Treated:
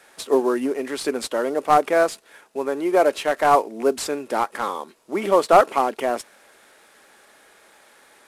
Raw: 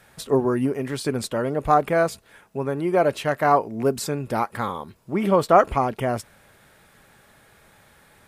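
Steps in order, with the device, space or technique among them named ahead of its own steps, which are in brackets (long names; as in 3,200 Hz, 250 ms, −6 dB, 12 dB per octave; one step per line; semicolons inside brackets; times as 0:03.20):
early wireless headset (high-pass filter 280 Hz 24 dB per octave; variable-slope delta modulation 64 kbit/s)
level +2.5 dB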